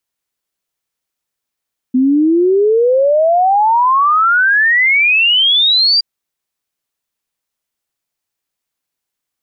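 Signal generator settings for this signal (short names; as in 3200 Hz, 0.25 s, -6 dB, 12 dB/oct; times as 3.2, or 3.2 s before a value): log sweep 250 Hz -> 4800 Hz 4.07 s -8 dBFS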